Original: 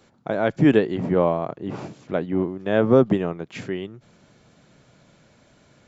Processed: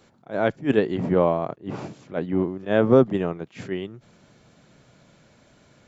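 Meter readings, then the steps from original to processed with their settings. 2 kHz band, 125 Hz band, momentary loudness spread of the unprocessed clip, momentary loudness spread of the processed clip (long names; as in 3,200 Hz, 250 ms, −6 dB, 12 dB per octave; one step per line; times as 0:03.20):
−1.5 dB, −2.0 dB, 15 LU, 16 LU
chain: backwards echo 33 ms −21.5 dB
level that may rise only so fast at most 260 dB per second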